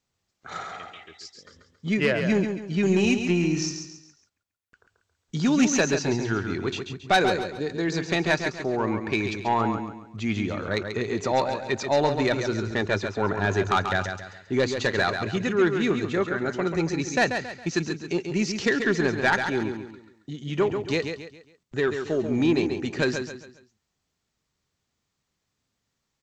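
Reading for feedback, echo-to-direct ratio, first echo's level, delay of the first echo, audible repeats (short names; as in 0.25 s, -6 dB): 37%, -6.5 dB, -7.0 dB, 0.137 s, 4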